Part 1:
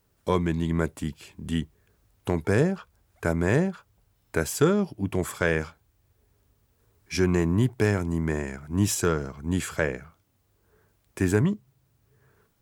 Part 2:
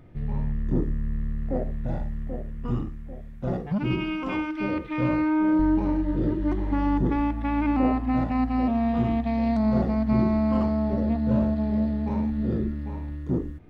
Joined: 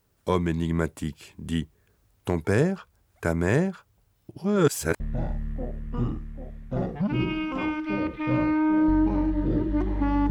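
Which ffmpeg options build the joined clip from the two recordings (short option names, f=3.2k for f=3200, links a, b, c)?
-filter_complex "[0:a]apad=whole_dur=10.3,atrim=end=10.3,asplit=2[a][b];[a]atrim=end=4.292[c];[b]atrim=start=4.288:end=5.002,asetpts=PTS-STARTPTS,areverse[d];[1:a]atrim=start=1.708:end=7.01[e];[c][d]acrossfade=d=0.004:c1=hsin:c2=hsin[f];[f][e]acrossfade=d=0.004:c1=hsin:c2=hsin"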